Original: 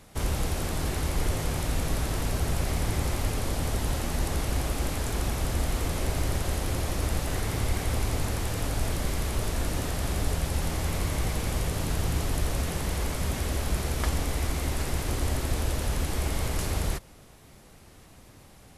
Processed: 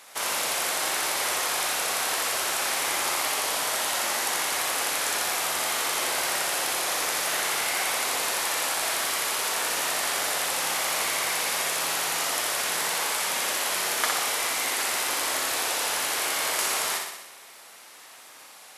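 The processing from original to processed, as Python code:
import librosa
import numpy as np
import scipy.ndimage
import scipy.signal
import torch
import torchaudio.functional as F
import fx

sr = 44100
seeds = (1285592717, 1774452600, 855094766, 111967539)

y = scipy.signal.sosfilt(scipy.signal.butter(2, 890.0, 'highpass', fs=sr, output='sos'), x)
y = fx.room_flutter(y, sr, wall_m=10.5, rt60_s=0.91)
y = y * librosa.db_to_amplitude(8.5)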